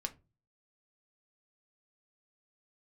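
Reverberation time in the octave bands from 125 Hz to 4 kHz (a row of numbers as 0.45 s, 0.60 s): 0.55 s, 0.40 s, 0.35 s, 0.25 s, 0.20 s, 0.15 s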